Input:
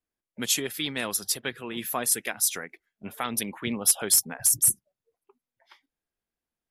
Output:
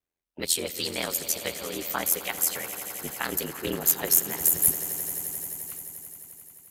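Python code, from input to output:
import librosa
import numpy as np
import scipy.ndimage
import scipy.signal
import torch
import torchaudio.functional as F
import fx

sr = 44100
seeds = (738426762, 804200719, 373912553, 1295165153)

y = fx.formant_shift(x, sr, semitones=4)
y = y * np.sin(2.0 * np.pi * 42.0 * np.arange(len(y)) / sr)
y = fx.echo_swell(y, sr, ms=87, loudest=5, wet_db=-16)
y = y * 10.0 ** (2.5 / 20.0)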